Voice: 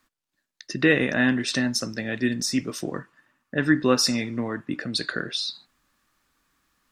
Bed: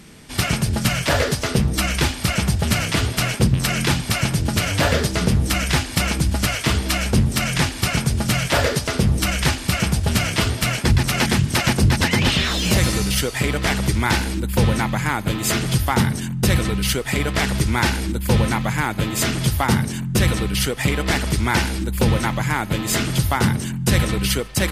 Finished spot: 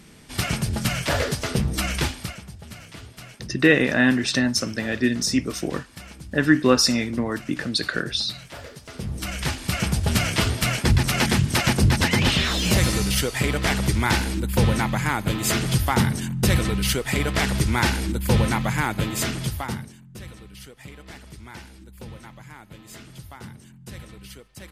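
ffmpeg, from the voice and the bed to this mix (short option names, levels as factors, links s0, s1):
-filter_complex "[0:a]adelay=2800,volume=1.41[s0];[1:a]volume=5.31,afade=t=out:st=2.02:d=0.38:silence=0.149624,afade=t=in:st=8.81:d=1.32:silence=0.112202,afade=t=out:st=18.92:d=1.05:silence=0.1[s1];[s0][s1]amix=inputs=2:normalize=0"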